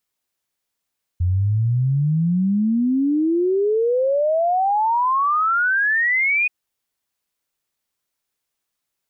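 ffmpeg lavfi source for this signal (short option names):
-f lavfi -i "aevalsrc='0.168*clip(min(t,5.28-t)/0.01,0,1)*sin(2*PI*86*5.28/log(2500/86)*(exp(log(2500/86)*t/5.28)-1))':d=5.28:s=44100"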